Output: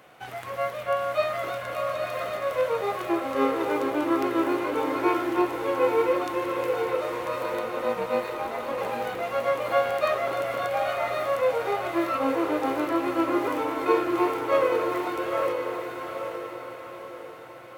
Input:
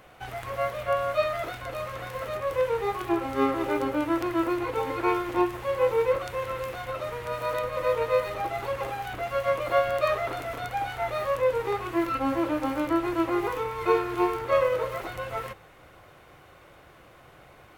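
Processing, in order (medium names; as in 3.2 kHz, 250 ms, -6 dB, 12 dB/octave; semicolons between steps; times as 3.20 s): high-pass 150 Hz 12 dB/octave; 7.43–8.78 s: AM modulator 270 Hz, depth 60%; echo that smears into a reverb 881 ms, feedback 45%, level -4 dB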